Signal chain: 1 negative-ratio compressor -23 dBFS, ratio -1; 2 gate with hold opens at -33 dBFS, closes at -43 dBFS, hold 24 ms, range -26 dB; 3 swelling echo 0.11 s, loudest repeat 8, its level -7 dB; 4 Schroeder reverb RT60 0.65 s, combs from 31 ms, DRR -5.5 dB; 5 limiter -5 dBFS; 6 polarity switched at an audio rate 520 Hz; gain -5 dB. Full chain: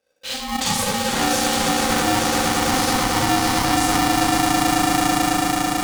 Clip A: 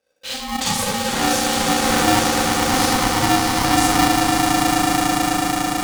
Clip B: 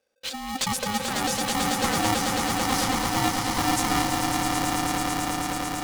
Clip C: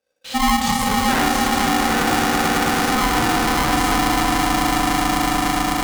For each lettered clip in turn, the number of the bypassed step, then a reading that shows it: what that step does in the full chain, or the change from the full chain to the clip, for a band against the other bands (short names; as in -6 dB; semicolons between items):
5, crest factor change +4.0 dB; 4, momentary loudness spread change +2 LU; 1, 8 kHz band -3.5 dB